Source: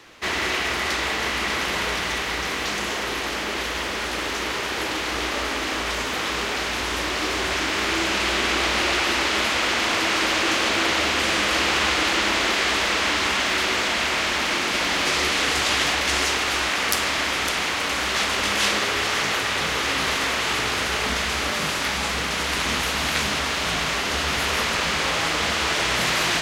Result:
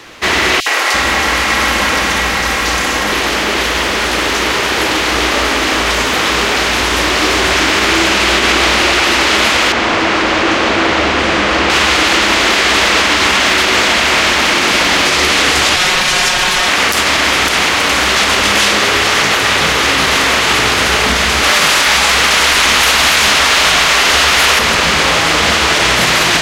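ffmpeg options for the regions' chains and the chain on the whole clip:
ffmpeg -i in.wav -filter_complex "[0:a]asettb=1/sr,asplit=3[link_01][link_02][link_03];[link_01]atrim=end=0.604[link_04];[link_02]atrim=start=0.6:end=3.12,asetpts=PTS-STARTPTS,afade=type=in:duration=0.004:curve=qsin,afade=type=out:start_time=2.516:duration=0.004:curve=qsin,aecho=1:1:3.7:0.33,atrim=end_sample=111132,acrossover=split=370|3400[link_05][link_06][link_07];[link_06]adelay=60[link_08];[link_05]adelay=340[link_09];[link_09][link_08][link_07]amix=inputs=3:normalize=0,atrim=end_sample=111132[link_10];[link_03]atrim=start=3.116[link_11];[link_04][link_10]acrossfade=duration=0.004:curve1=hsin:curve2=qsin[link_12];[link_12][link_11]acrossfade=duration=0.004:curve1=qsin:curve2=hsin,asettb=1/sr,asplit=3[link_13][link_14][link_15];[link_13]atrim=end=9.724[link_16];[link_14]atrim=start=9.72:end=11.7,asetpts=PTS-STARTPTS,afade=type=in:duration=0.004:curve=qsin,afade=type=out:start_time=1.976:duration=0.004:curve=qsin,lowpass=7400,highshelf=frequency=2300:gain=-10[link_17];[link_15]atrim=start=11.696[link_18];[link_16][link_17]acrossfade=duration=0.004:curve1=hsin:curve2=qsin[link_19];[link_19][link_18]acrossfade=duration=0.004:curve1=qsin:curve2=hsin,asettb=1/sr,asplit=3[link_20][link_21][link_22];[link_20]atrim=end=15.764[link_23];[link_21]atrim=start=15.76:end=16.68,asetpts=PTS-STARTPTS,afade=type=in:duration=0.004:curve=qsin,afade=type=out:start_time=0.916:duration=0.004:curve=qsin,lowshelf=frequency=340:gain=-6.5,aeval=exprs='val(0)*sin(2*PI*340*n/s)':channel_layout=same,aecho=1:1:5.5:0.81,atrim=end_sample=40572[link_24];[link_22]atrim=start=16.676[link_25];[link_23][link_24]acrossfade=duration=0.004:curve1=hsin:curve2=qsin[link_26];[link_26][link_25]acrossfade=duration=0.004:curve1=qsin:curve2=hsin,asettb=1/sr,asplit=3[link_27][link_28][link_29];[link_27]atrim=end=21.434[link_30];[link_28]atrim=start=21.43:end=24.59,asetpts=PTS-STARTPTS,afade=type=in:duration=0.004:curve=qsin,afade=type=out:start_time=3.156:duration=0.004:curve=qsin,equalizer=frequency=130:width=0.37:gain=-11.5,acontrast=75[link_31];[link_29]atrim=start=24.586[link_32];[link_30][link_31]acrossfade=duration=0.004:curve1=hsin:curve2=qsin[link_33];[link_33][link_32]acrossfade=duration=0.004:curve1=qsin:curve2=hsin,acontrast=41,alimiter=level_in=8dB:limit=-1dB:release=50:level=0:latency=1,volume=-1dB" out.wav

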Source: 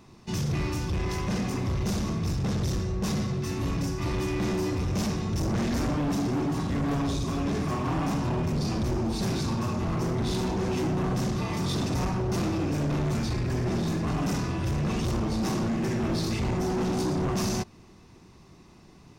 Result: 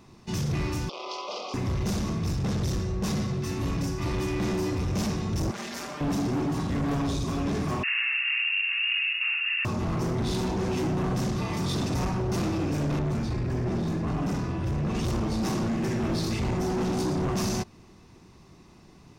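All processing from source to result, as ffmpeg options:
ffmpeg -i in.wav -filter_complex "[0:a]asettb=1/sr,asplit=3[link_01][link_02][link_03];[link_01]atrim=end=0.894[link_04];[link_02]atrim=start=0.89:end=1.54,asetpts=PTS-STARTPTS,afade=type=in:duration=0.004:curve=qsin,afade=type=out:start_time=0.646:duration=0.004:curve=qsin,asuperstop=centerf=1700:order=4:qfactor=1.7,highpass=frequency=460:width=0.5412,highpass=frequency=460:width=1.3066,equalizer=frequency=590:width_type=q:width=4:gain=6,equalizer=frequency=1200:width_type=q:width=4:gain=6,equalizer=frequency=1800:width_type=q:width=4:gain=-8,equalizer=frequency=3200:width_type=q:width=4:gain=6,equalizer=frequency=4700:width_type=q:width=4:gain=6,lowpass=frequency=5400:width=0.5412,lowpass=frequency=5400:width=1.3066[link_05];[link_03]atrim=start=1.536[link_06];[link_04][link_05]acrossfade=duration=0.004:curve1=hsin:curve2=qsin[link_07];[link_07][link_06]acrossfade=duration=0.004:curve1=qsin:curve2=hsin,asettb=1/sr,asplit=3[link_08][link_09][link_10];[link_08]atrim=end=5.514[link_11];[link_09]atrim=start=5.51:end=6.01,asetpts=PTS-STARTPTS,afade=type=in:duration=0.004:curve=qsin,afade=type=out:start_time=0.496:duration=0.004:curve=qsin,highpass=frequency=1200:poles=1,aecho=1:1:5:0.47,atrim=end_sample=22050[link_12];[link_10]atrim=start=6.006[link_13];[link_11][link_12]acrossfade=duration=0.004:curve1=hsin:curve2=qsin[link_14];[link_14][link_13]acrossfade=duration=0.004:curve1=qsin:curve2=hsin,asettb=1/sr,asplit=3[link_15][link_16][link_17];[link_15]atrim=end=7.834[link_18];[link_16]atrim=start=7.83:end=9.65,asetpts=PTS-STARTPTS,afade=type=in:duration=0.004:curve=qsin,afade=type=out:start_time=1.816:duration=0.004:curve=qsin,lowpass=frequency=2500:width_type=q:width=0.5098,lowpass=frequency=2500:width_type=q:width=0.6013,lowpass=frequency=2500:width_type=q:width=0.9,lowpass=frequency=2500:width_type=q:width=2.563,afreqshift=-2900,highpass=frequency=1100:width=0.5412,highpass=frequency=1100:width=1.3066[link_19];[link_17]atrim=start=9.646[link_20];[link_18][link_19]acrossfade=duration=0.004:curve1=hsin:curve2=qsin[link_21];[link_21][link_20]acrossfade=duration=0.004:curve1=qsin:curve2=hsin,asettb=1/sr,asplit=3[link_22][link_23][link_24];[link_22]atrim=end=12.994[link_25];[link_23]atrim=start=12.99:end=14.95,asetpts=PTS-STARTPTS,afade=type=in:duration=0.004:curve=qsin,afade=type=out:start_time=1.956:duration=0.004:curve=qsin,lowpass=frequency=1400:poles=1,aemphasis=mode=production:type=cd[link_26];[link_24]atrim=start=14.946[link_27];[link_25][link_26]acrossfade=duration=0.004:curve1=hsin:curve2=qsin[link_28];[link_28][link_27]acrossfade=duration=0.004:curve1=qsin:curve2=hsin" out.wav

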